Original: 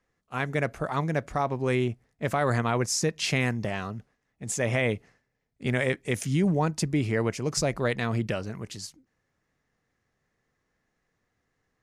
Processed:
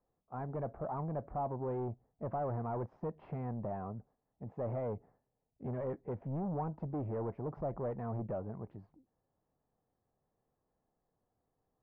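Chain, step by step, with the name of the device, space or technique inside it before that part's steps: overdriven synthesiser ladder filter (saturation -28.5 dBFS, distortion -8 dB; four-pole ladder low-pass 1 kHz, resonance 40%); trim +2 dB

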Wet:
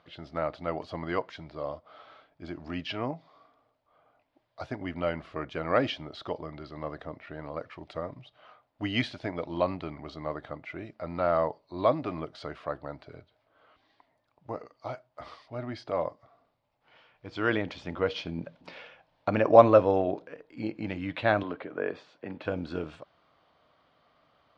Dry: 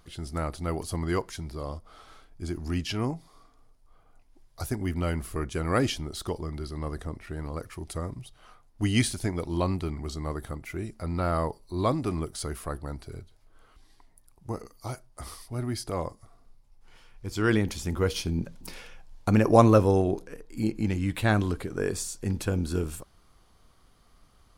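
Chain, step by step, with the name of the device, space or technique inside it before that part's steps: kitchen radio (cabinet simulation 190–3700 Hz, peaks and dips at 210 Hz -8 dB, 380 Hz -7 dB, 610 Hz +8 dB); 21.43–22.45 s: three-band isolator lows -12 dB, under 180 Hz, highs -19 dB, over 3.5 kHz

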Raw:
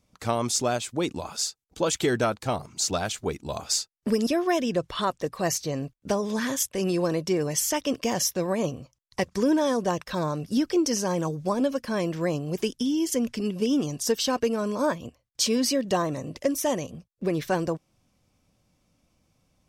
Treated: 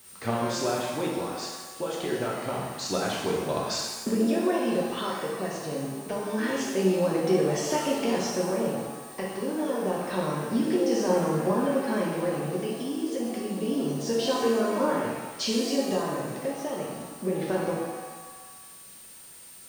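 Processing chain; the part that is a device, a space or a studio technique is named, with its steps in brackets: medium wave at night (band-pass 130–3500 Hz; compression, threshold -27 dBFS, peak gain reduction 8.5 dB; tremolo 0.27 Hz, depth 50%; whistle 9 kHz -52 dBFS; white noise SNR 22 dB); peaking EQ 390 Hz +2.5 dB 0.8 oct; pitch-shifted reverb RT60 1.2 s, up +7 st, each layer -8 dB, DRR -3.5 dB

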